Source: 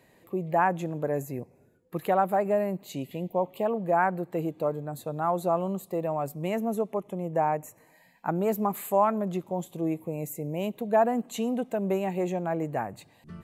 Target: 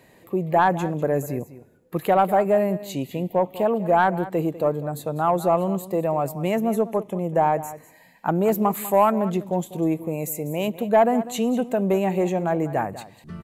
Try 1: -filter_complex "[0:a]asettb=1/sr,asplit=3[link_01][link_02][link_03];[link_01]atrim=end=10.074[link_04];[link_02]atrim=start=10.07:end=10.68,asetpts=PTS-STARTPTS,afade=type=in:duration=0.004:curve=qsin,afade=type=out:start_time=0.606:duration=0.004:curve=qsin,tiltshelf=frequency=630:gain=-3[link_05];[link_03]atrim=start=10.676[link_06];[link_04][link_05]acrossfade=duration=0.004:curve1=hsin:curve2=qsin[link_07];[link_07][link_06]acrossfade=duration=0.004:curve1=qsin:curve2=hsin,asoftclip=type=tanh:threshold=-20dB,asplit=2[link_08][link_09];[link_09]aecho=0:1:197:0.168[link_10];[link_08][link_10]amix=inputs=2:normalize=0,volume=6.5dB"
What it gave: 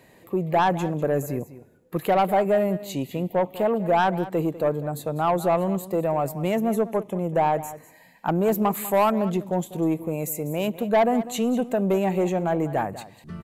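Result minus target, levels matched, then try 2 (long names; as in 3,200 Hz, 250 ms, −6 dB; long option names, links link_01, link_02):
soft clipping: distortion +9 dB
-filter_complex "[0:a]asettb=1/sr,asplit=3[link_01][link_02][link_03];[link_01]atrim=end=10.074[link_04];[link_02]atrim=start=10.07:end=10.68,asetpts=PTS-STARTPTS,afade=type=in:duration=0.004:curve=qsin,afade=type=out:start_time=0.606:duration=0.004:curve=qsin,tiltshelf=frequency=630:gain=-3[link_05];[link_03]atrim=start=10.676[link_06];[link_04][link_05]acrossfade=duration=0.004:curve1=hsin:curve2=qsin[link_07];[link_07][link_06]acrossfade=duration=0.004:curve1=qsin:curve2=hsin,asoftclip=type=tanh:threshold=-13.5dB,asplit=2[link_08][link_09];[link_09]aecho=0:1:197:0.168[link_10];[link_08][link_10]amix=inputs=2:normalize=0,volume=6.5dB"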